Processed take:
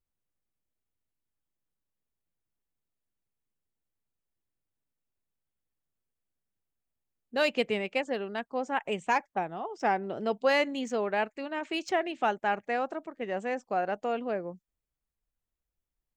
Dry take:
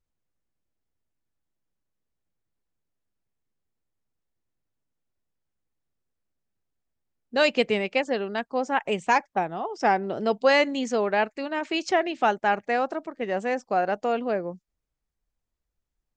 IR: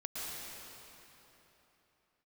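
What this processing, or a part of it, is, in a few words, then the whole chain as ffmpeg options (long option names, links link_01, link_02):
exciter from parts: -filter_complex "[0:a]asplit=2[link_01][link_02];[link_02]highpass=frequency=2800:width=0.5412,highpass=frequency=2800:width=1.3066,asoftclip=type=tanh:threshold=-32.5dB,highpass=4600,volume=-4.5dB[link_03];[link_01][link_03]amix=inputs=2:normalize=0,volume=-5.5dB"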